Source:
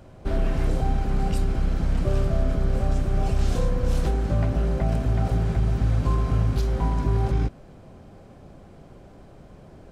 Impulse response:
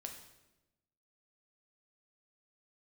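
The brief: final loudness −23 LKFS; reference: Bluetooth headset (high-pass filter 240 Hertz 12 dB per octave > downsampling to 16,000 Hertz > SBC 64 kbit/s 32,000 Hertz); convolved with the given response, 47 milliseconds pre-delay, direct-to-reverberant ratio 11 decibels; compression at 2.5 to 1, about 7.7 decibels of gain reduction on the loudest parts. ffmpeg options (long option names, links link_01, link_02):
-filter_complex "[0:a]acompressor=threshold=-29dB:ratio=2.5,asplit=2[link_01][link_02];[1:a]atrim=start_sample=2205,adelay=47[link_03];[link_02][link_03]afir=irnorm=-1:irlink=0,volume=-7.5dB[link_04];[link_01][link_04]amix=inputs=2:normalize=0,highpass=240,aresample=16000,aresample=44100,volume=17dB" -ar 32000 -c:a sbc -b:a 64k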